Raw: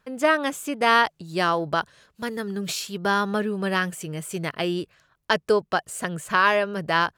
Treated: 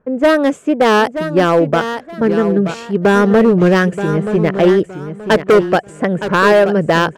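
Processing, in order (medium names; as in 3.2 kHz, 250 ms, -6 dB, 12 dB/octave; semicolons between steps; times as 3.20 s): level-controlled noise filter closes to 1.2 kHz, open at -15 dBFS; graphic EQ 125/250/500/1000/4000/8000 Hz +3/+6/+8/-3/-9/+6 dB; gain riding within 4 dB 2 s; hard clipper -14.5 dBFS, distortion -11 dB; on a send: feedback delay 928 ms, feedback 27%, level -10 dB; on the sum: warped record 45 rpm, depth 160 cents; trim +8.5 dB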